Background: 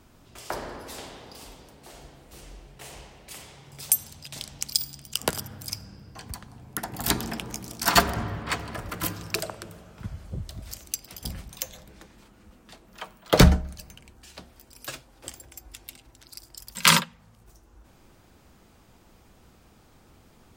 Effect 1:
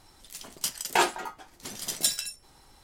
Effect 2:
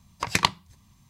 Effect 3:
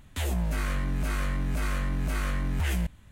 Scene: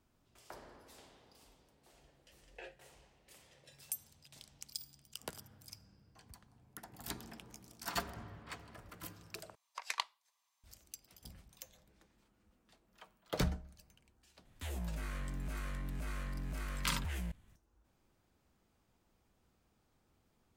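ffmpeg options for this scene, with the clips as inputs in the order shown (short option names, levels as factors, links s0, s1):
-filter_complex "[0:a]volume=0.112[s0];[1:a]asplit=3[s1][s2][s3];[s1]bandpass=f=530:t=q:w=8,volume=1[s4];[s2]bandpass=f=1840:t=q:w=8,volume=0.501[s5];[s3]bandpass=f=2480:t=q:w=8,volume=0.355[s6];[s4][s5][s6]amix=inputs=3:normalize=0[s7];[2:a]highpass=f=630:w=0.5412,highpass=f=630:w=1.3066[s8];[s0]asplit=2[s9][s10];[s9]atrim=end=9.554[s11];[s8]atrim=end=1.09,asetpts=PTS-STARTPTS,volume=0.168[s12];[s10]atrim=start=10.636[s13];[s7]atrim=end=2.83,asetpts=PTS-STARTPTS,volume=0.2,afade=t=in:d=0.004:c=hsin,afade=t=out:st=2.826:d=0.004:c=hsin,adelay=1630[s14];[3:a]atrim=end=3.11,asetpts=PTS-STARTPTS,volume=0.237,afade=t=in:d=0.004:c=hsin,afade=t=out:st=3.106:d=0.004:c=hsin,adelay=14450[s15];[s11][s12]acrossfade=d=0.004:c1=hsin:c2=hsin[s16];[s16][s13]acrossfade=d=0.004:c1=hsin:c2=hsin[s17];[s17][s14][s15]amix=inputs=3:normalize=0"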